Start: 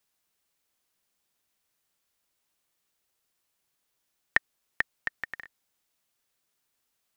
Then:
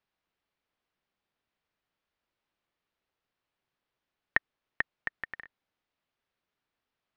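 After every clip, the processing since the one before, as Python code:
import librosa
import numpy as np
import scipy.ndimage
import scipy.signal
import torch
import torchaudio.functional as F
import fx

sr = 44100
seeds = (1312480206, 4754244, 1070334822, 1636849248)

y = fx.air_absorb(x, sr, metres=270.0)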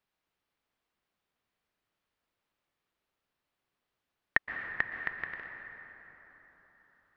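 y = fx.rev_plate(x, sr, seeds[0], rt60_s=4.4, hf_ratio=0.5, predelay_ms=110, drr_db=5.0)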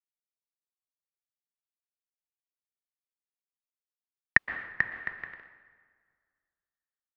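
y = fx.band_widen(x, sr, depth_pct=100)
y = y * librosa.db_to_amplitude(-2.0)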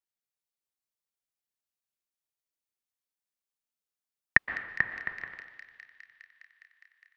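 y = fx.echo_wet_highpass(x, sr, ms=205, feedback_pct=81, hz=4300.0, wet_db=-5)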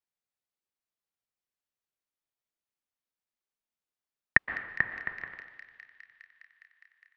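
y = fx.high_shelf(x, sr, hz=4400.0, db=-9.5)
y = y * librosa.db_to_amplitude(1.0)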